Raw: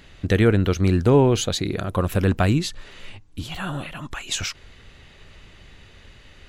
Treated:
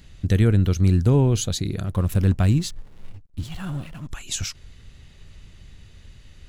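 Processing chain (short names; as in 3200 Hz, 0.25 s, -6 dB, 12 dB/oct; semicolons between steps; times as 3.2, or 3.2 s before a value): tone controls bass +12 dB, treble +10 dB; 1.86–4.09 backlash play -31.5 dBFS; gain -8.5 dB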